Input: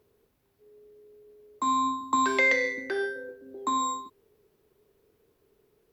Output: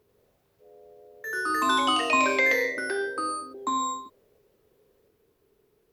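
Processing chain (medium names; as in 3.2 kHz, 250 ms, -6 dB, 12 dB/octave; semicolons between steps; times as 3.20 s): ever faster or slower copies 93 ms, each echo +3 st, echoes 3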